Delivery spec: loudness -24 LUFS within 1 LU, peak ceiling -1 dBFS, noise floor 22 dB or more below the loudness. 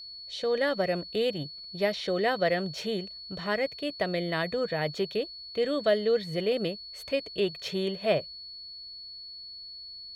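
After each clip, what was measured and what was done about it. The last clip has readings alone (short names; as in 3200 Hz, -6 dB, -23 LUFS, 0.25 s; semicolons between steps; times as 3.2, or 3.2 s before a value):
steady tone 4400 Hz; tone level -41 dBFS; loudness -29.5 LUFS; peak -13.5 dBFS; loudness target -24.0 LUFS
-> notch 4400 Hz, Q 30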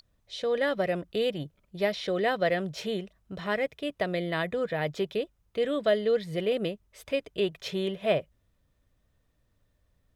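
steady tone none; loudness -30.0 LUFS; peak -13.5 dBFS; loudness target -24.0 LUFS
-> gain +6 dB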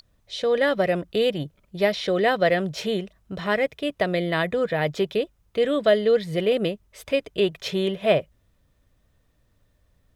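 loudness -24.0 LUFS; peak -7.5 dBFS; noise floor -66 dBFS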